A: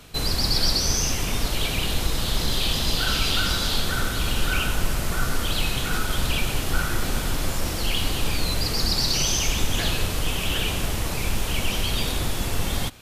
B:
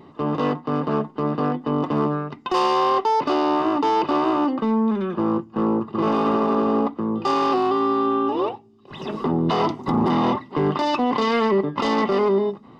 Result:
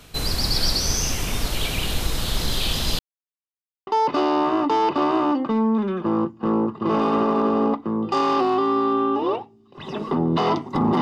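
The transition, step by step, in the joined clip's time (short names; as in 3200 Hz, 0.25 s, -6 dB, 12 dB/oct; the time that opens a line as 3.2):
A
2.99–3.87 mute
3.87 switch to B from 3 s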